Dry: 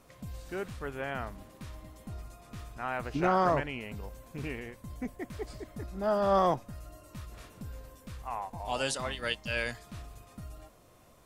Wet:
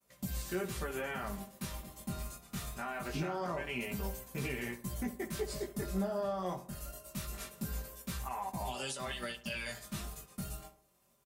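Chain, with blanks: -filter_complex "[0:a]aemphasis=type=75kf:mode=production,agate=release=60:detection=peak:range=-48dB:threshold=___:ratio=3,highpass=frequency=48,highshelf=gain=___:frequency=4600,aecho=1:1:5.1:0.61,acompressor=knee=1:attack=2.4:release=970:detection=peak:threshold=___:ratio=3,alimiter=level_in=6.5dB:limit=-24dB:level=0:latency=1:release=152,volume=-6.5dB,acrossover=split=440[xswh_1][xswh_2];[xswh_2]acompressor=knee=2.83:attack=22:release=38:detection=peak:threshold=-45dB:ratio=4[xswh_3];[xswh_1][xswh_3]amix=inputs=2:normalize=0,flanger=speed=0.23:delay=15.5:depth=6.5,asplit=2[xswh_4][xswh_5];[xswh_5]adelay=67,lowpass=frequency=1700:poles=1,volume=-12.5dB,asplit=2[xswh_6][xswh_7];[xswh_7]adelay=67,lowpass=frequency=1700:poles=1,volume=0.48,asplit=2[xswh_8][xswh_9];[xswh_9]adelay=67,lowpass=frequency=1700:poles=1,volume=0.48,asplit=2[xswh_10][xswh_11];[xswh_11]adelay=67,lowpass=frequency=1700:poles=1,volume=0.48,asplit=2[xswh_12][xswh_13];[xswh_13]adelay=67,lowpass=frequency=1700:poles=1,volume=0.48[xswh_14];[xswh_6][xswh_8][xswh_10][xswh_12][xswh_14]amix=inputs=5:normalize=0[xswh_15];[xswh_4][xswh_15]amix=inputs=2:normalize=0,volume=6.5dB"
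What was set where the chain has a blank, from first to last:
-44dB, -4, -28dB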